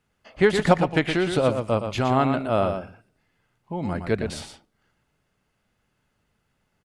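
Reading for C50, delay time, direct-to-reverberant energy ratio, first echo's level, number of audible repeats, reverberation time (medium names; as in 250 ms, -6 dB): no reverb, 117 ms, no reverb, -7.5 dB, 1, no reverb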